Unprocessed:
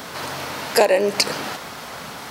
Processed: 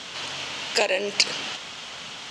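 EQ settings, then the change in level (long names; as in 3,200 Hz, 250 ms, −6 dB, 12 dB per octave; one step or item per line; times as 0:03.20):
transistor ladder low-pass 7,900 Hz, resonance 50%
parametric band 3,000 Hz +14.5 dB 0.88 octaves
0.0 dB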